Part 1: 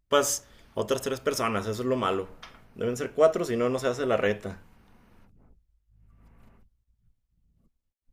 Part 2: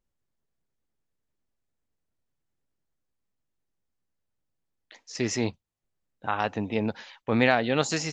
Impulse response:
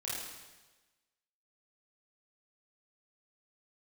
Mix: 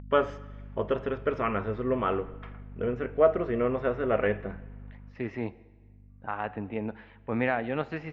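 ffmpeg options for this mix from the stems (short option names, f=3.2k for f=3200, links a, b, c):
-filter_complex "[0:a]aeval=exprs='val(0)+0.00891*(sin(2*PI*50*n/s)+sin(2*PI*2*50*n/s)/2+sin(2*PI*3*50*n/s)/3+sin(2*PI*4*50*n/s)/4+sin(2*PI*5*50*n/s)/5)':c=same,volume=-1.5dB,asplit=2[a][b];[b]volume=-18.5dB[c];[1:a]volume=-6dB,asplit=3[d][e][f];[e]volume=-19dB[g];[f]apad=whole_len=358237[h];[a][h]sidechaincompress=threshold=-52dB:ratio=8:attack=8.7:release=1150[i];[2:a]atrim=start_sample=2205[j];[c][g]amix=inputs=2:normalize=0[k];[k][j]afir=irnorm=-1:irlink=0[l];[i][d][l]amix=inputs=3:normalize=0,acompressor=mode=upward:threshold=-46dB:ratio=2.5,lowpass=f=2.4k:w=0.5412,lowpass=f=2.4k:w=1.3066"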